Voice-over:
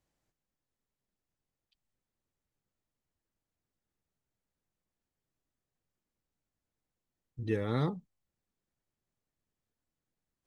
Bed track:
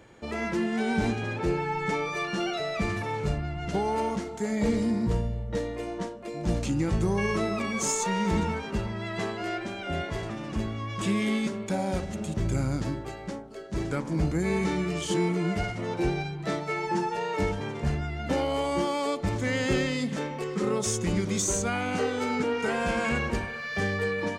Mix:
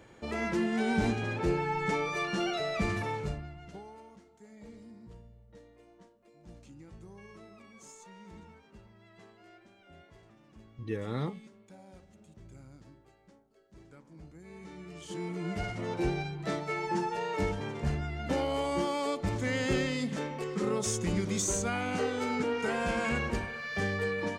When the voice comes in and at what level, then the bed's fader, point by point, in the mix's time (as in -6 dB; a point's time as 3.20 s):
3.40 s, -3.0 dB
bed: 3.07 s -2 dB
4.03 s -24.5 dB
14.40 s -24.5 dB
15.74 s -3.5 dB